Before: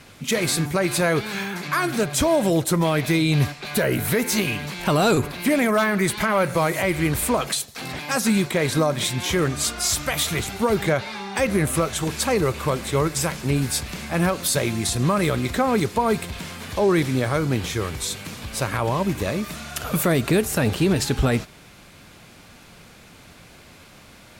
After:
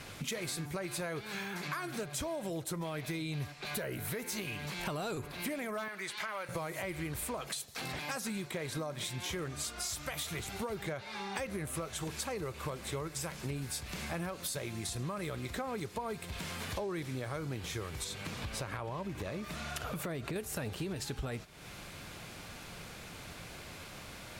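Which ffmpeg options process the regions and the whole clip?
ffmpeg -i in.wav -filter_complex "[0:a]asettb=1/sr,asplit=3[link_01][link_02][link_03];[link_01]atrim=end=5.884[link_04];[link_02]atrim=start=5.88:end=6.49,asetpts=PTS-STARTPTS,afade=type=in:duration=0.004:curve=qsin,afade=type=out:start_time=0.606:duration=0.004:curve=qsin,highpass=frequency=1200:poles=1,acrossover=split=7300[link_05][link_06];[link_06]acompressor=threshold=-46dB:ratio=4:attack=1:release=60[link_07];[link_05][link_07]amix=inputs=2:normalize=0[link_08];[link_03]atrim=start=6.486[link_09];[link_04][link_08]acrossfade=duration=0.004:curve1=hsin:curve2=qsin[link_10];[link_10][link_09]acrossfade=duration=0.004:curve1=qsin:curve2=hsin,asettb=1/sr,asplit=3[link_11][link_12][link_13];[link_11]atrim=end=18.044[link_14];[link_12]atrim=start=18.04:end=20.36,asetpts=PTS-STARTPTS,afade=type=in:duration=0.004:curve=qsin,afade=type=out:start_time=2.316:duration=0.004:curve=qsin,highshelf=frequency=6100:gain=-9,acompressor=threshold=-23dB:ratio=2:attack=3.2:release=140:knee=1:detection=peak[link_15];[link_13]atrim=start=20.356[link_16];[link_14][link_15]acrossfade=duration=0.004:curve1=hsin:curve2=qsin[link_17];[link_17][link_16]acrossfade=duration=0.004:curve1=qsin:curve2=hsin,equalizer=frequency=240:width_type=o:width=0.6:gain=-4,acompressor=threshold=-37dB:ratio=6" out.wav

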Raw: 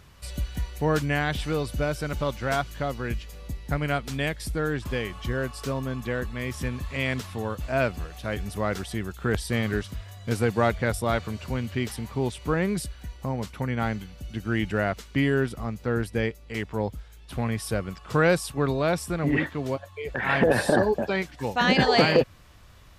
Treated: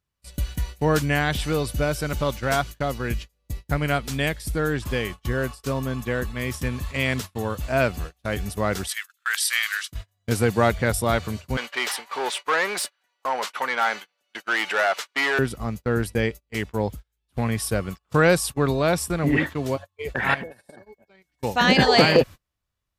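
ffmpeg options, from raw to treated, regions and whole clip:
ffmpeg -i in.wav -filter_complex "[0:a]asettb=1/sr,asplit=3[link_01][link_02][link_03];[link_01]atrim=end=8.874[link_04];[link_02]atrim=start=8.87:end=9.92,asetpts=PTS-STARTPTS,afade=type=in:duration=0.004:curve=qsin,afade=type=out:start_time=1.046:duration=0.004:curve=qsin,highpass=frequency=1400:width=0.5412,highpass=frequency=1400:width=1.3066,acontrast=81,tremolo=f=39:d=0.182[link_05];[link_03]atrim=start=9.916[link_06];[link_04][link_05]acrossfade=duration=0.004:curve1=hsin:curve2=qsin[link_07];[link_07][link_06]acrossfade=duration=0.004:curve1=qsin:curve2=hsin,asettb=1/sr,asplit=3[link_08][link_09][link_10];[link_08]atrim=end=11.574[link_11];[link_09]atrim=start=11.57:end=15.39,asetpts=PTS-STARTPTS,afade=type=in:duration=0.004:curve=qsin,afade=type=out:start_time=3.816:duration=0.004:curve=qsin,asplit=2[link_12][link_13];[link_13]highpass=frequency=720:poles=1,volume=22dB,asoftclip=type=tanh:threshold=-11.5dB[link_14];[link_12][link_14]amix=inputs=2:normalize=0,lowpass=frequency=1700:poles=1,volume=-6dB,highpass=720[link_15];[link_10]atrim=start=15.386[link_16];[link_11][link_15]acrossfade=duration=0.004:curve1=hsin:curve2=qsin[link_17];[link_17][link_16]acrossfade=duration=0.004:curve1=qsin:curve2=hsin,asettb=1/sr,asplit=3[link_18][link_19][link_20];[link_18]atrim=end=20.344[link_21];[link_19]atrim=start=20.34:end=21.43,asetpts=PTS-STARTPTS,afade=type=in:duration=0.004:curve=qsin,afade=type=out:start_time=1.086:duration=0.004:curve=qsin,highshelf=frequency=11000:gain=7,acompressor=threshold=-36dB:ratio=5:attack=3.2:release=140:knee=1:detection=peak,aeval=exprs='val(0)+0.00316*sin(2*PI*2200*n/s)':channel_layout=same[link_22];[link_20]atrim=start=21.426[link_23];[link_21][link_22]acrossfade=duration=0.004:curve1=hsin:curve2=qsin[link_24];[link_24][link_23]acrossfade=duration=0.004:curve1=qsin:curve2=hsin,agate=range=-34dB:threshold=-34dB:ratio=16:detection=peak,highshelf=frequency=6300:gain=7.5,volume=3dB" out.wav

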